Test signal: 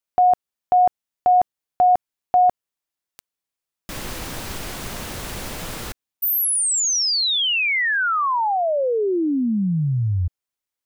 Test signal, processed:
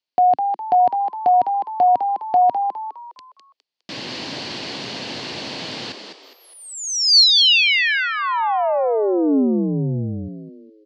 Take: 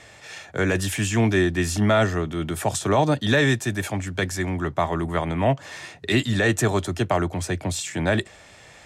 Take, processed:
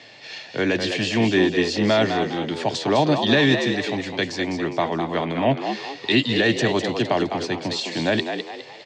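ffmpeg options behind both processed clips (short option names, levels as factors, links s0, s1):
-filter_complex "[0:a]highpass=f=130:w=0.5412,highpass=f=130:w=1.3066,equalizer=f=180:t=q:w=4:g=-4,equalizer=f=270:t=q:w=4:g=4,equalizer=f=1300:t=q:w=4:g=-8,equalizer=f=2900:t=q:w=4:g=5,equalizer=f=4400:t=q:w=4:g=10,lowpass=f=5400:w=0.5412,lowpass=f=5400:w=1.3066,asplit=6[s0][s1][s2][s3][s4][s5];[s1]adelay=205,afreqshift=75,volume=0.447[s6];[s2]adelay=410,afreqshift=150,volume=0.174[s7];[s3]adelay=615,afreqshift=225,volume=0.0676[s8];[s4]adelay=820,afreqshift=300,volume=0.0266[s9];[s5]adelay=1025,afreqshift=375,volume=0.0104[s10];[s0][s6][s7][s8][s9][s10]amix=inputs=6:normalize=0,volume=1.12"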